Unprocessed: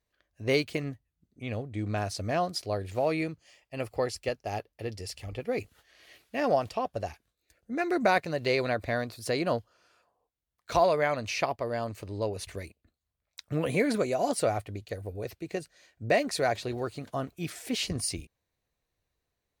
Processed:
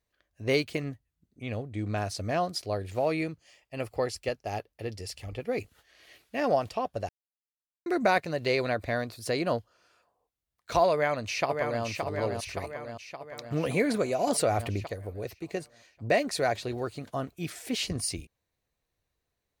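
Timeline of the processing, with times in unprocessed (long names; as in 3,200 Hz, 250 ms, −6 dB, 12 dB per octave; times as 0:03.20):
0:07.09–0:07.86: silence
0:10.92–0:11.83: delay throw 570 ms, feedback 60%, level −5 dB
0:14.27–0:14.87: envelope flattener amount 50%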